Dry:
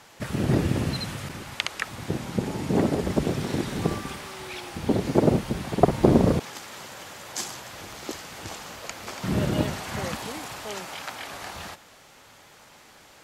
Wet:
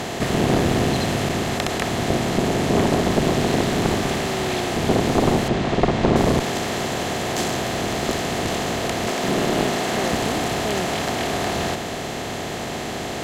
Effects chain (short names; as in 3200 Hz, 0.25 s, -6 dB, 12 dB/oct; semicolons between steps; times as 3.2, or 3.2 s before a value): per-bin compression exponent 0.4; 9.08–10.13 Bessel high-pass 210 Hz, order 2; one-sided clip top -21 dBFS; 5.48–6.16 air absorption 100 m